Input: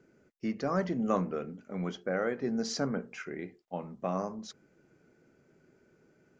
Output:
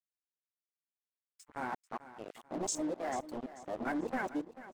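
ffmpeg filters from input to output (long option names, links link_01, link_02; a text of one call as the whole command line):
ffmpeg -i in.wav -filter_complex "[0:a]areverse,asoftclip=type=tanh:threshold=-30dB,highshelf=frequency=4800:gain=12,bandreject=frequency=60:width_type=h:width=6,bandreject=frequency=120:width_type=h:width=6,bandreject=frequency=180:width_type=h:width=6,bandreject=frequency=240:width_type=h:width=6,bandreject=frequency=300:width_type=h:width=6,bandreject=frequency=360:width_type=h:width=6,bandreject=frequency=420:width_type=h:width=6,bandreject=frequency=480:width_type=h:width=6,acrusher=bits=5:mix=0:aa=0.5,afwtdn=0.0178,acrossover=split=750[link_01][link_02];[link_01]aeval=exprs='sgn(val(0))*max(abs(val(0))-0.00299,0)':channel_layout=same[link_03];[link_03][link_02]amix=inputs=2:normalize=0,aecho=1:1:594|1188|1782:0.178|0.0587|0.0194,asetrate=59535,aresample=44100" out.wav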